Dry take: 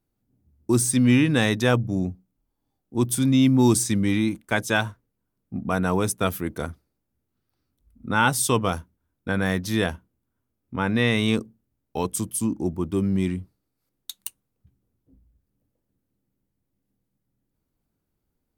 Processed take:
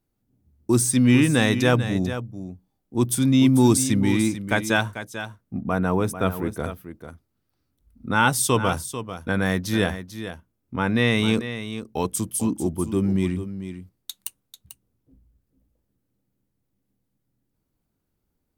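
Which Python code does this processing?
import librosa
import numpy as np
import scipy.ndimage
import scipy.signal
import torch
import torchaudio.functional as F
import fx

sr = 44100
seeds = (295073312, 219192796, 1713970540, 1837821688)

p1 = fx.peak_eq(x, sr, hz=7300.0, db=-10.0, octaves=2.5, at=(5.61, 6.64))
p2 = p1 + fx.echo_single(p1, sr, ms=443, db=-11.0, dry=0)
y = p2 * 10.0 ** (1.0 / 20.0)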